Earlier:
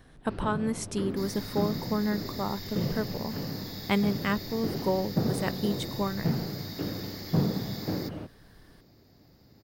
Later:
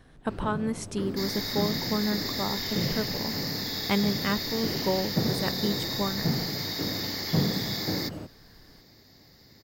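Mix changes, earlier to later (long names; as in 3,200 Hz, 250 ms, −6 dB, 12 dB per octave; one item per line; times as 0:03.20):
first sound: remove Savitzky-Golay smoothing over 15 samples
second sound +11.5 dB
master: add high-shelf EQ 9,700 Hz −6 dB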